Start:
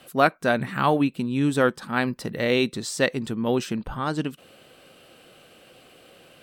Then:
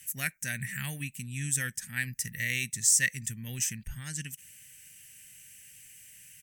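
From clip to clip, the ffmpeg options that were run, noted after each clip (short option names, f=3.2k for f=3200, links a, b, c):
-af "firequalizer=gain_entry='entry(110,0);entry(330,-27);entry(1200,-27);entry(1800,4);entry(4000,-10);entry(6100,15)':delay=0.05:min_phase=1,volume=-3dB"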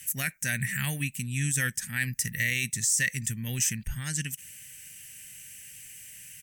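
-af "alimiter=limit=-22dB:level=0:latency=1:release=19,volume=6dB"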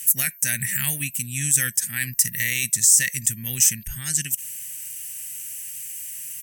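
-af "crystalizer=i=3:c=0,aeval=exprs='val(0)+0.00708*sin(2*PI*13000*n/s)':c=same,volume=-1dB"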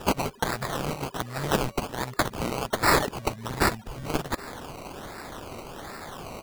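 -af "acrusher=samples=20:mix=1:aa=0.000001:lfo=1:lforange=12:lforate=1.3,volume=-5dB"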